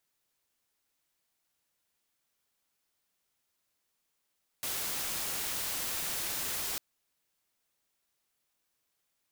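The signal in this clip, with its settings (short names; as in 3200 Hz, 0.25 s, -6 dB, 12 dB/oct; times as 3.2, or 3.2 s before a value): noise white, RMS -35 dBFS 2.15 s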